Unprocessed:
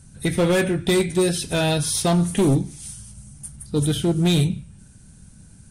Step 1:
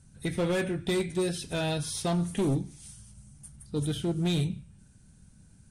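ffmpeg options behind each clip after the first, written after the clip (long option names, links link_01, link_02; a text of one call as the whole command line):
ffmpeg -i in.wav -af "highshelf=frequency=12000:gain=-10.5,volume=-9dB" out.wav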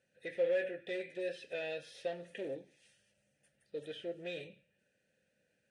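ffmpeg -i in.wav -filter_complex "[0:a]asplit=2[link_01][link_02];[link_02]highpass=frequency=720:poles=1,volume=12dB,asoftclip=type=tanh:threshold=-21.5dB[link_03];[link_01][link_03]amix=inputs=2:normalize=0,lowpass=frequency=6400:poles=1,volume=-6dB,asplit=3[link_04][link_05][link_06];[link_04]bandpass=frequency=530:width_type=q:width=8,volume=0dB[link_07];[link_05]bandpass=frequency=1840:width_type=q:width=8,volume=-6dB[link_08];[link_06]bandpass=frequency=2480:width_type=q:width=8,volume=-9dB[link_09];[link_07][link_08][link_09]amix=inputs=3:normalize=0,volume=1dB" out.wav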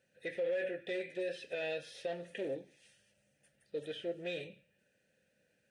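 ffmpeg -i in.wav -af "alimiter=level_in=7dB:limit=-24dB:level=0:latency=1:release=50,volume=-7dB,volume=2.5dB" out.wav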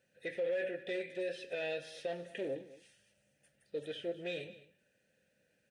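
ffmpeg -i in.wav -af "aecho=1:1:210:0.133" out.wav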